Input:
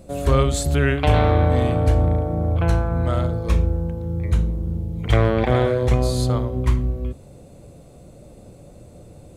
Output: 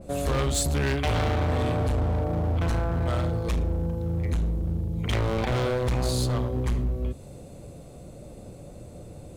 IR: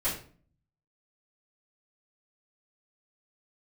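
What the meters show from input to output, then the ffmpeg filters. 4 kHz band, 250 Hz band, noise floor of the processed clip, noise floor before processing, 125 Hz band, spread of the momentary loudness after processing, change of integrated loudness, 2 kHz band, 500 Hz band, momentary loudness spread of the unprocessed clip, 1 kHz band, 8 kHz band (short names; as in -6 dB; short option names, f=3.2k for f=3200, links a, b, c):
-1.5 dB, -5.5 dB, -44 dBFS, -45 dBFS, -6.5 dB, 19 LU, -6.0 dB, -5.0 dB, -7.0 dB, 9 LU, -6.5 dB, +0.5 dB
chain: -filter_complex "[0:a]asplit=2[a][b];[b]acompressor=threshold=-29dB:ratio=6,volume=-1.5dB[c];[a][c]amix=inputs=2:normalize=0,volume=17.5dB,asoftclip=hard,volume=-17.5dB,adynamicequalizer=threshold=0.00708:dfrequency=2500:dqfactor=0.7:tfrequency=2500:tqfactor=0.7:attack=5:release=100:ratio=0.375:range=2:mode=boostabove:tftype=highshelf,volume=-4.5dB"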